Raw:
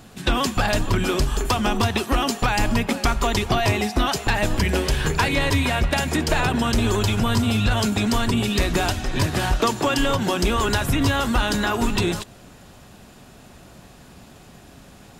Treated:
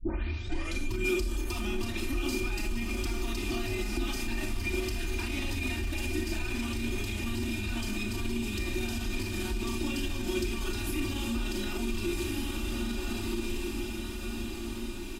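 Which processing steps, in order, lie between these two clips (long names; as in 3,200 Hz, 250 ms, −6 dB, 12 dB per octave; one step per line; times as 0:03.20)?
turntable start at the beginning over 0.88 s
in parallel at −1.5 dB: downward compressor, threshold −27 dBFS, peak gain reduction 11 dB
on the sum: guitar amp tone stack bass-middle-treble 6-0-2
four-comb reverb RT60 0.37 s, combs from 27 ms, DRR 3 dB
fake sidechain pumping 125 BPM, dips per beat 1, −8 dB, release 144 ms
on a send: feedback delay with all-pass diffusion 1,392 ms, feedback 56%, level −4 dB
on the sum: brickwall limiter −28.5 dBFS, peak gain reduction 11 dB
high-shelf EQ 9,900 Hz +5.5 dB
comb filter 3.3 ms, depth 81%
hollow resonant body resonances 350/730/2,400 Hz, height 16 dB, ringing for 50 ms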